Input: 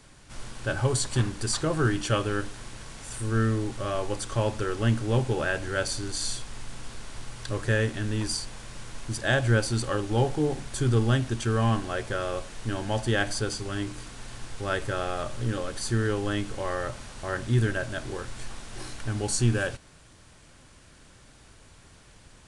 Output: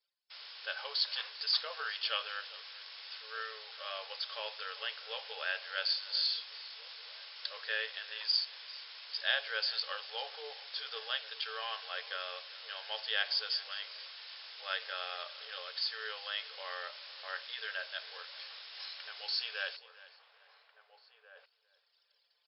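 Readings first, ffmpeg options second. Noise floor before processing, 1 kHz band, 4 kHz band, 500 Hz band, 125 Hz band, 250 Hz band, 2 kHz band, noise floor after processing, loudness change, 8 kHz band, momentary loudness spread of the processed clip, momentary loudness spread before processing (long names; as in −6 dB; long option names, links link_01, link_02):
−53 dBFS, −10.5 dB, +2.5 dB, −18.0 dB, below −40 dB, below −40 dB, −6.0 dB, −74 dBFS, −8.5 dB, below −40 dB, 14 LU, 17 LU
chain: -filter_complex "[0:a]aderivative,anlmdn=0.001,equalizer=frequency=3400:width=1.1:gain=3,asplit=2[link_01][link_02];[link_02]adelay=1691,volume=-18dB,highshelf=frequency=4000:gain=-38[link_03];[link_01][link_03]amix=inputs=2:normalize=0,areverse,acompressor=mode=upward:threshold=-54dB:ratio=2.5,areverse,afftfilt=real='re*between(b*sr/4096,430,5400)':imag='im*between(b*sr/4096,430,5400)':win_size=4096:overlap=0.75,asplit=2[link_04][link_05];[link_05]aecho=0:1:398|796:0.112|0.0281[link_06];[link_04][link_06]amix=inputs=2:normalize=0,volume=5.5dB"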